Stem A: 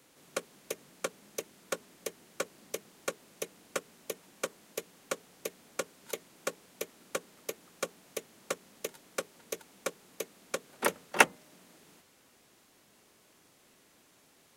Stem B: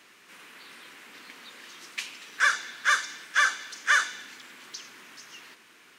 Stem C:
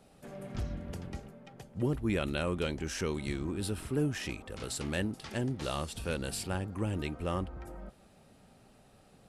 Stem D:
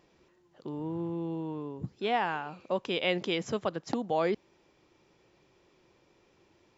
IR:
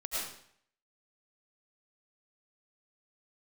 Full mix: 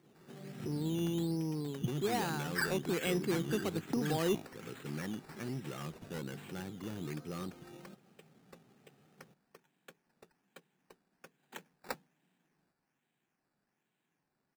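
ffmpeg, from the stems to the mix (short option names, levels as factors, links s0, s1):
-filter_complex "[0:a]aecho=1:1:1.2:0.46,adelay=700,volume=0.141[s0];[1:a]aecho=1:1:3.1:0.95,adelay=150,volume=0.211[s1];[2:a]asoftclip=type=hard:threshold=0.0266,adelay=50,volume=0.631[s2];[3:a]lowshelf=f=420:g=6,volume=0.562,asplit=2[s3][s4];[s4]apad=whole_len=270572[s5];[s1][s5]sidechaincompress=threshold=0.00501:ratio=8:attack=16:release=144[s6];[s0][s6][s2][s3]amix=inputs=4:normalize=0,highpass=f=130:w=0.5412,highpass=f=130:w=1.3066,equalizer=f=150:t=q:w=4:g=6,equalizer=f=380:t=q:w=4:g=3,equalizer=f=600:t=q:w=4:g=-9,equalizer=f=1000:t=q:w=4:g=-5,lowpass=f=3300:w=0.5412,lowpass=f=3300:w=1.3066,acrusher=samples=11:mix=1:aa=0.000001:lfo=1:lforange=6.6:lforate=1.2,asoftclip=type=tanh:threshold=0.0794"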